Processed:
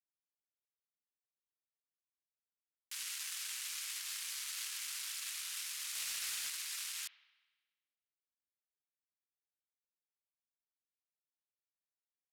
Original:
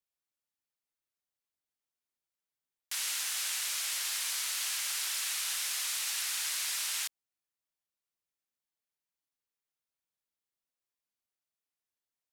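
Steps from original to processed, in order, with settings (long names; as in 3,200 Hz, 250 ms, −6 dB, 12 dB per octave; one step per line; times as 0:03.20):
adaptive Wiener filter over 41 samples
high-pass filter 1,100 Hz 24 dB per octave
brickwall limiter −32 dBFS, peak gain reduction 8.5 dB
0:05.95–0:06.50: leveller curve on the samples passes 1
spring reverb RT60 1.3 s, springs 59 ms, chirp 50 ms, DRR 15 dB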